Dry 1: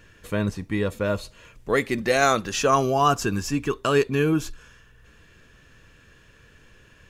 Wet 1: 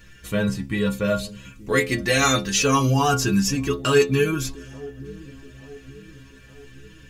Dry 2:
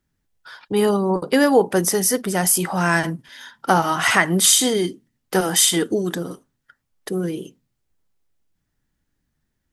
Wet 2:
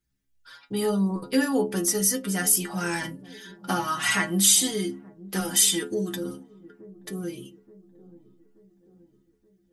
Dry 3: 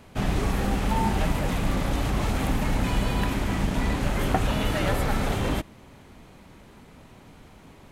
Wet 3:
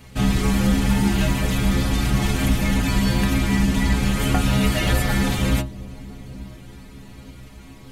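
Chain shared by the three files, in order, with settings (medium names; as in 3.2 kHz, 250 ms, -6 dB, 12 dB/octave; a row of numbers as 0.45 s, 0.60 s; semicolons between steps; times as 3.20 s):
peaking EQ 710 Hz -9 dB 2.3 oct; inharmonic resonator 63 Hz, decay 0.4 s, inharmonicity 0.008; feedback echo behind a low-pass 878 ms, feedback 51%, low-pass 490 Hz, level -17 dB; peak normalisation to -6 dBFS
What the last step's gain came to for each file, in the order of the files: +15.5 dB, +6.0 dB, +17.0 dB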